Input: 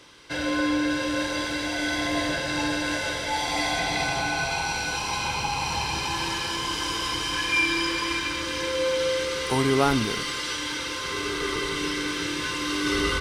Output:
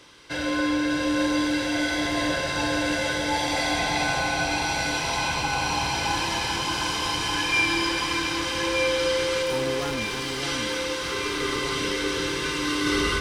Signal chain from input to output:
0:09.42–0:10.42: tube saturation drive 29 dB, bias 0.75
delay that swaps between a low-pass and a high-pass 613 ms, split 960 Hz, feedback 73%, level −3 dB

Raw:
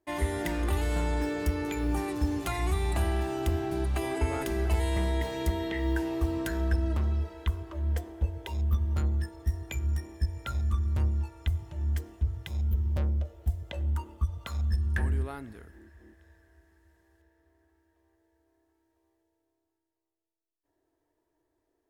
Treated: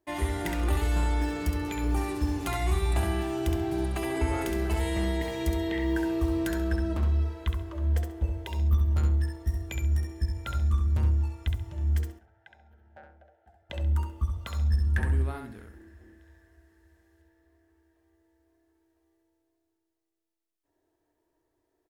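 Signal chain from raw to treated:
0:12.12–0:13.70: pair of resonant band-passes 1,100 Hz, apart 0.95 octaves
repeating echo 67 ms, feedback 21%, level −5 dB

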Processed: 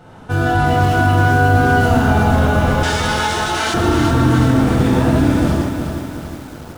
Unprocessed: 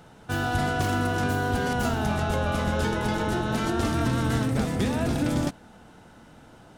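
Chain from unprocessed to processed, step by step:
high-shelf EQ 2,400 Hz −9 dB
reverb whose tail is shaped and stops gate 210 ms flat, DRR −6 dB
in parallel at 0 dB: brickwall limiter −16 dBFS, peak gain reduction 8.5 dB
0:02.83–0:03.74: on the sum: meter weighting curve ITU-R 468
feedback echo at a low word length 368 ms, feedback 55%, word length 6 bits, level −6.5 dB

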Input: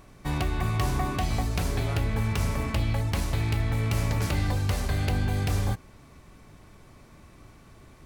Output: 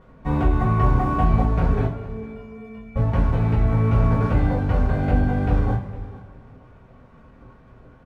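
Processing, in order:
low-pass filter 1,100 Hz 12 dB per octave
dead-zone distortion −54 dBFS
0:01.86–0:02.96: stiff-string resonator 210 Hz, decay 0.64 s, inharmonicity 0.03
single-tap delay 458 ms −19 dB
coupled-rooms reverb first 0.26 s, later 1.9 s, from −18 dB, DRR −7.5 dB
level +1.5 dB

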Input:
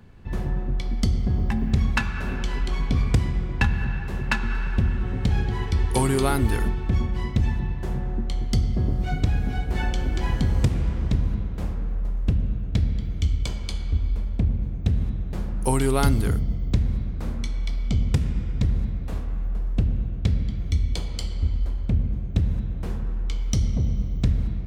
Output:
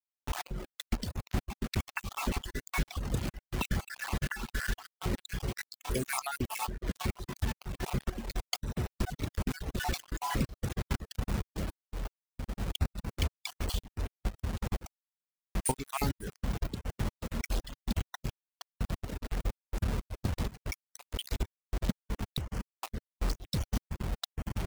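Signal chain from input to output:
time-frequency cells dropped at random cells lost 65%
low-shelf EQ 120 Hz −7.5 dB
in parallel at −1 dB: brickwall limiter −21 dBFS, peak gain reduction 11 dB
on the sum: downward compressor 8 to 1, threshold −27 dBFS, peak gain reduction 12 dB
bit reduction 6 bits
shaped tremolo saw up 2.1 Hz, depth 70%
reverb reduction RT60 0.91 s
level +2 dB

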